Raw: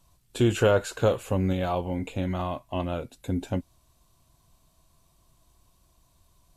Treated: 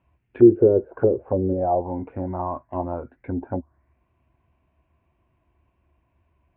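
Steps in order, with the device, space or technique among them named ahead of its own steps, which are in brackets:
envelope filter bass rig (envelope-controlled low-pass 400–2,700 Hz down, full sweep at −20 dBFS; loudspeaker in its box 63–2,000 Hz, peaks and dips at 71 Hz +9 dB, 160 Hz −5 dB, 250 Hz +3 dB, 350 Hz +5 dB, 1,200 Hz −6 dB)
level −2 dB

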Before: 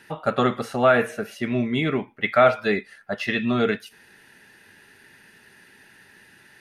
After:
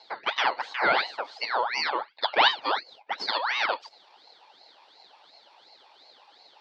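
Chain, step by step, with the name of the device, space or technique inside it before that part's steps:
voice changer toy (ring modulator whose carrier an LFO sweeps 1,600 Hz, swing 55%, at 2.8 Hz; loudspeaker in its box 530–4,900 Hz, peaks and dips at 840 Hz +7 dB, 1,200 Hz −3 dB, 1,800 Hz −4 dB, 2,600 Hz −8 dB, 4,400 Hz +8 dB)

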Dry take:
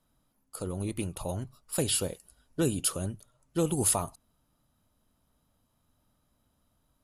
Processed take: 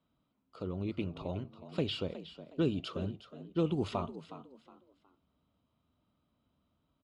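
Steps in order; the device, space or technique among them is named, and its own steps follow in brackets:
frequency-shifting delay pedal into a guitar cabinet (echo with shifted repeats 365 ms, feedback 30%, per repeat +63 Hz, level −13.5 dB; loudspeaker in its box 77–3,600 Hz, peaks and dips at 120 Hz −5 dB, 530 Hz −3 dB, 830 Hz −6 dB, 1,700 Hz −10 dB)
level −1.5 dB

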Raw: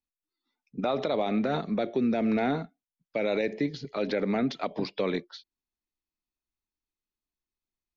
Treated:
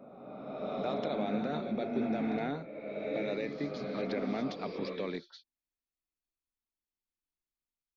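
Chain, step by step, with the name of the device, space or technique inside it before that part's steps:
reverse reverb (reversed playback; convolution reverb RT60 2.5 s, pre-delay 101 ms, DRR 1.5 dB; reversed playback)
level −8.5 dB

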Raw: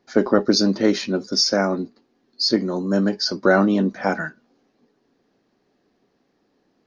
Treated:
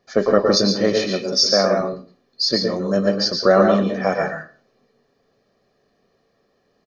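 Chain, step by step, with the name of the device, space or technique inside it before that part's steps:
0:00.96–0:01.81: high-pass filter 110 Hz
microphone above a desk (comb filter 1.7 ms, depth 60%; convolution reverb RT60 0.40 s, pre-delay 110 ms, DRR 2.5 dB)

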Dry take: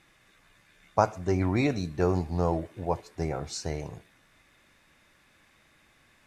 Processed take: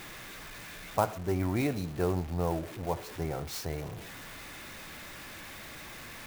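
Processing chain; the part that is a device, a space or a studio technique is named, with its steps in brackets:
early CD player with a faulty converter (converter with a step at zero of −34.5 dBFS; converter with an unsteady clock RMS 0.027 ms)
level −5 dB

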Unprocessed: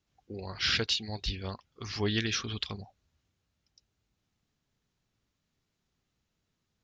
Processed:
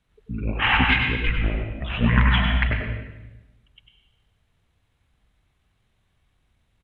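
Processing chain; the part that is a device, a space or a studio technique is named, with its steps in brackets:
monster voice (pitch shifter −10 semitones; low-shelf EQ 160 Hz +4.5 dB; single-tap delay 99 ms −7 dB; convolution reverb RT60 1.0 s, pre-delay 86 ms, DRR 4 dB)
level +8.5 dB

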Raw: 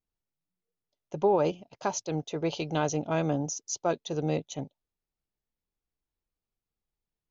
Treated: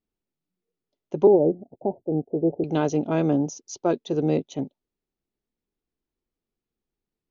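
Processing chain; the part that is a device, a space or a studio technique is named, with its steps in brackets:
inside a cardboard box (low-pass filter 5,400 Hz 12 dB per octave; hollow resonant body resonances 250/360 Hz, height 10 dB, ringing for 25 ms)
0:01.27–0:02.64: Butterworth low-pass 810 Hz 72 dB per octave

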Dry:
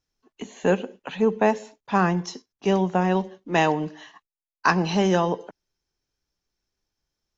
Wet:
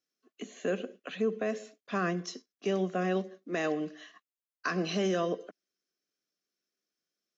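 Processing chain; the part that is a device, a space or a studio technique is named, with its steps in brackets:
PA system with an anti-feedback notch (high-pass filter 200 Hz 24 dB per octave; Butterworth band-reject 890 Hz, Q 2.5; brickwall limiter −16 dBFS, peak gain reduction 8 dB)
0:03.23–0:03.67: parametric band 3,100 Hz −7.5 dB 0.33 octaves
level −5 dB

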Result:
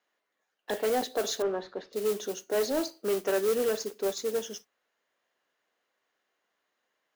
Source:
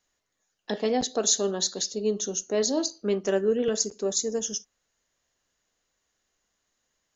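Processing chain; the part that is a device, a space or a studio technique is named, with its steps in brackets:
carbon microphone (band-pass filter 360–2,700 Hz; soft clipping −23.5 dBFS, distortion −15 dB; noise that follows the level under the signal 14 dB)
0:01.42–0:01.93: low-pass filter 1,700 Hz 12 dB per octave
level +2.5 dB

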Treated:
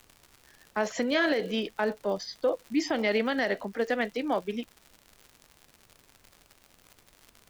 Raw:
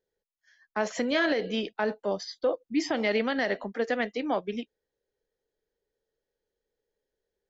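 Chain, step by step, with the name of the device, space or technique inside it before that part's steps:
vinyl LP (surface crackle 110 per second −38 dBFS; pink noise bed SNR 32 dB)

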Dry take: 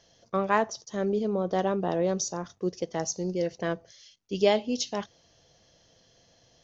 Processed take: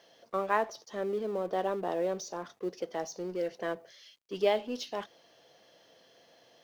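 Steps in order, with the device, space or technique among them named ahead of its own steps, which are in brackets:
phone line with mismatched companding (band-pass filter 320–3,400 Hz; mu-law and A-law mismatch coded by mu)
level −4 dB

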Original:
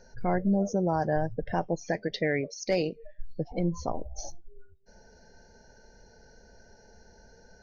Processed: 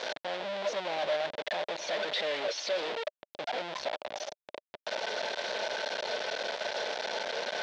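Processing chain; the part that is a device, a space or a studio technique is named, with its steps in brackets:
home computer beeper (sign of each sample alone; loudspeaker in its box 590–4,500 Hz, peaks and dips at 600 Hz +9 dB, 1,200 Hz −6 dB, 3,500 Hz +5 dB)
level +1 dB

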